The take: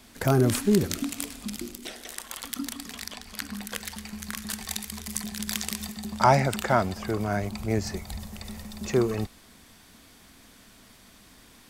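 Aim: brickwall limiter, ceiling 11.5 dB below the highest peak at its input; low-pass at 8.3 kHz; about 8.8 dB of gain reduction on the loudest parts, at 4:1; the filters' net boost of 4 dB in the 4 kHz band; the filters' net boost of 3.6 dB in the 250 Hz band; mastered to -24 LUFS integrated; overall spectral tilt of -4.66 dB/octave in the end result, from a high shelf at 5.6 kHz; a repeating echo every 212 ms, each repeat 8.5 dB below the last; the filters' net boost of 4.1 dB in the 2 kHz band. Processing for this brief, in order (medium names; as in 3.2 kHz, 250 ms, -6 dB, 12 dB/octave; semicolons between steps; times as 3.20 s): low-pass 8.3 kHz; peaking EQ 250 Hz +4.5 dB; peaking EQ 2 kHz +4.5 dB; peaking EQ 4 kHz +5.5 dB; treble shelf 5.6 kHz -4 dB; compression 4:1, threshold -24 dBFS; peak limiter -19.5 dBFS; feedback delay 212 ms, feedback 38%, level -8.5 dB; trim +8.5 dB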